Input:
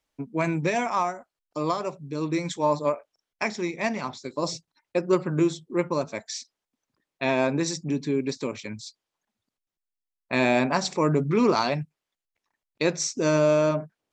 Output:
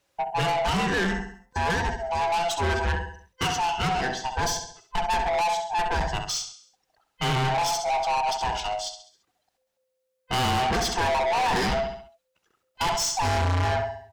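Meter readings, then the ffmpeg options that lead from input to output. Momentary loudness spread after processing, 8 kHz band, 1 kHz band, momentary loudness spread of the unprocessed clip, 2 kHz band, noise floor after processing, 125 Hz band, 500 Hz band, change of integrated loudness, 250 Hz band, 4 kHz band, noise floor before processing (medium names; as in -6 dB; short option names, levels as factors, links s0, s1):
8 LU, +3.5 dB, +6.0 dB, 12 LU, +3.5 dB, -77 dBFS, +1.5 dB, -4.0 dB, 0.0 dB, -7.5 dB, +6.5 dB, under -85 dBFS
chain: -filter_complex "[0:a]afftfilt=real='real(if(lt(b,1008),b+24*(1-2*mod(floor(b/24),2)),b),0)':imag='imag(if(lt(b,1008),b+24*(1-2*mod(floor(b/24),2)),b),0)':win_size=2048:overlap=0.75,asplit=2[s0][s1];[s1]aecho=0:1:67|134|201|268|335:0.316|0.139|0.0612|0.0269|0.0119[s2];[s0][s2]amix=inputs=2:normalize=0,aeval=exprs='(tanh(35.5*val(0)+0.1)-tanh(0.1))/35.5':c=same,adynamicequalizer=threshold=0.00316:dfrequency=6800:dqfactor=0.7:tfrequency=6800:tqfactor=0.7:attack=5:release=100:ratio=0.375:range=2.5:mode=cutabove:tftype=highshelf,volume=2.82"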